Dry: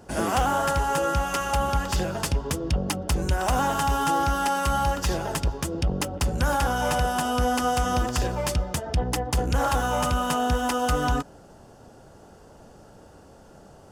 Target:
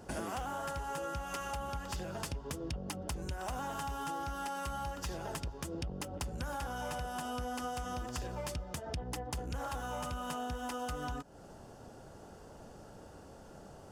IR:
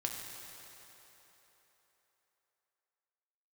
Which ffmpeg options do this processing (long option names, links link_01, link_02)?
-af "acompressor=threshold=-34dB:ratio=6,volume=-3dB"